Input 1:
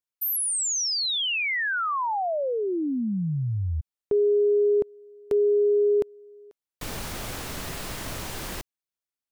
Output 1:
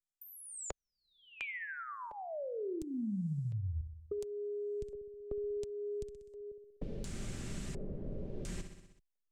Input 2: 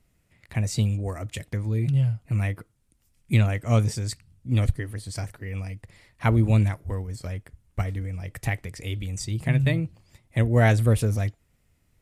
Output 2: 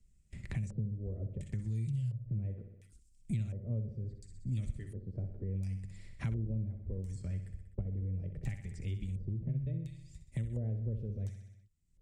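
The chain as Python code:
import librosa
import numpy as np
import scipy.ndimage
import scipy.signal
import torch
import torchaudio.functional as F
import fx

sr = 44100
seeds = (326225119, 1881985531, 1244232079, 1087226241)

p1 = fx.gate_hold(x, sr, open_db=-51.0, close_db=-57.0, hold_ms=21.0, range_db=-22, attack_ms=6.1, release_ms=49.0)
p2 = fx.rider(p1, sr, range_db=3, speed_s=2.0)
p3 = fx.tone_stack(p2, sr, knobs='10-0-1')
p4 = p3 + fx.echo_feedback(p3, sr, ms=63, feedback_pct=52, wet_db=-10.0, dry=0)
p5 = fx.filter_lfo_lowpass(p4, sr, shape='square', hz=0.71, low_hz=510.0, high_hz=7800.0, q=3.1)
p6 = p5 + 0.31 * np.pad(p5, (int(5.1 * sr / 1000.0), 0))[:len(p5)]
y = fx.band_squash(p6, sr, depth_pct=100)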